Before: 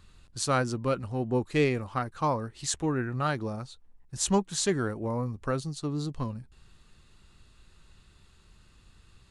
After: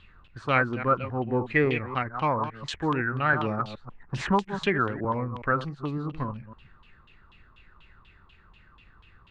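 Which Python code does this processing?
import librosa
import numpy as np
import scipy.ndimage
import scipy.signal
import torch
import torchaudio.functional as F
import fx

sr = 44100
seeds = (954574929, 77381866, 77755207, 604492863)

y = fx.reverse_delay(x, sr, ms=139, wet_db=-11)
y = fx.filter_lfo_lowpass(y, sr, shape='saw_down', hz=4.1, low_hz=980.0, high_hz=3200.0, q=5.8)
y = fx.band_squash(y, sr, depth_pct=70, at=(3.33, 5.05))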